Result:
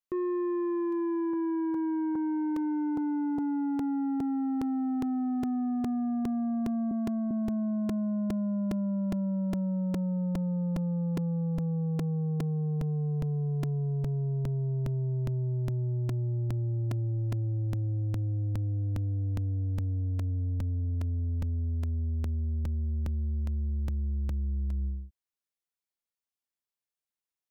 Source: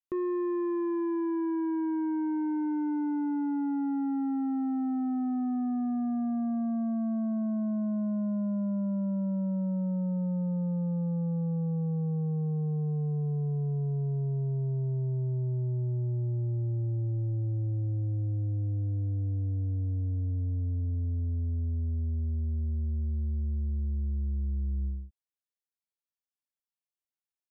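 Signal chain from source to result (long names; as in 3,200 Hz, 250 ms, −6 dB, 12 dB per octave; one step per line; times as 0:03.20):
0:06.91–0:07.31: Butterworth high-pass 190 Hz
regular buffer underruns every 0.41 s, samples 128, repeat, from 0:00.92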